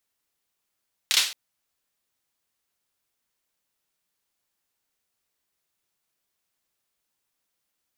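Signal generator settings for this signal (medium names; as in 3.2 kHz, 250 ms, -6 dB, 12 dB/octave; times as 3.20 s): hand clap length 0.22 s, bursts 3, apart 29 ms, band 3.6 kHz, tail 0.42 s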